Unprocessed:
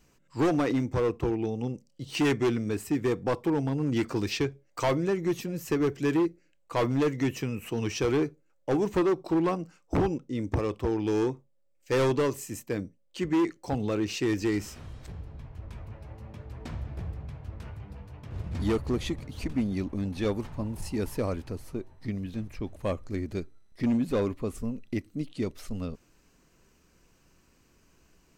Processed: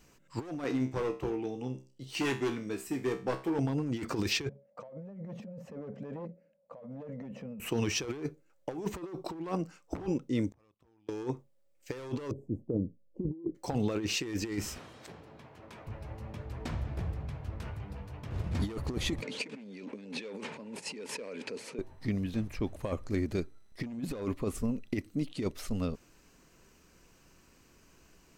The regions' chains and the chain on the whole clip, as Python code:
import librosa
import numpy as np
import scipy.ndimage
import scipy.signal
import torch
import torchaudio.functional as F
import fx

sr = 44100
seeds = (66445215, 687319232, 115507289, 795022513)

y = fx.chain(x, sr, fx.peak_eq(hz=82.0, db=-6.0, octaves=1.3),
    fx.comb_fb(f0_hz=65.0, decay_s=0.36, harmonics='all', damping=0.0, mix_pct=80), at=(0.64, 3.59))
y = fx.chain(y, sr, fx.double_bandpass(hz=340.0, octaves=1.4),
    fx.over_compress(threshold_db=-46.0, ratio=-1.0),
    fx.transient(attack_db=0, sustain_db=6), at=(4.49, 7.6))
y = fx.chain(y, sr, fx.peak_eq(hz=410.0, db=-7.5, octaves=0.74),
    fx.level_steps(step_db=12),
    fx.gate_flip(shuts_db=-40.0, range_db=-33), at=(10.51, 11.09))
y = fx.chain(y, sr, fx.cheby2_lowpass(hz=1400.0, order=4, stop_db=50),
    fx.low_shelf(hz=190.0, db=4.5), at=(12.31, 13.55))
y = fx.chain(y, sr, fx.highpass(hz=250.0, slope=12),
    fx.high_shelf(hz=8900.0, db=-4.0), at=(14.78, 15.87))
y = fx.chain(y, sr, fx.clip_hard(threshold_db=-24.0),
    fx.over_compress(threshold_db=-39.0, ratio=-1.0),
    fx.cabinet(low_hz=220.0, low_slope=24, high_hz=8300.0, hz=(320.0, 460.0, 730.0, 1200.0, 2400.0, 5900.0), db=(-8, 7, -8, -6, 7, -3)), at=(19.22, 21.79))
y = fx.low_shelf(y, sr, hz=220.0, db=-3.0)
y = fx.over_compress(y, sr, threshold_db=-31.0, ratio=-0.5)